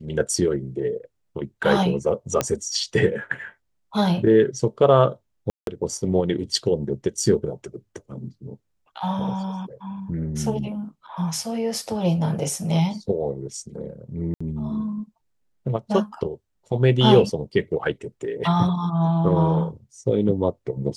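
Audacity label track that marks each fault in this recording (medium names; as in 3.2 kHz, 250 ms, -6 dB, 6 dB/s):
2.410000	2.410000	pop -7 dBFS
5.500000	5.670000	dropout 172 ms
14.340000	14.400000	dropout 65 ms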